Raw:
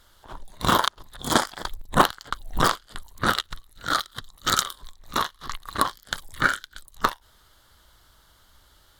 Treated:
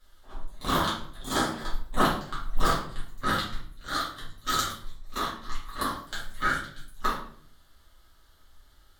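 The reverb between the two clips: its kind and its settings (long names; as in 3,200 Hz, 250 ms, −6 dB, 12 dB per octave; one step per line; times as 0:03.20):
rectangular room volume 77 cubic metres, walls mixed, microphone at 2.2 metres
level −14.5 dB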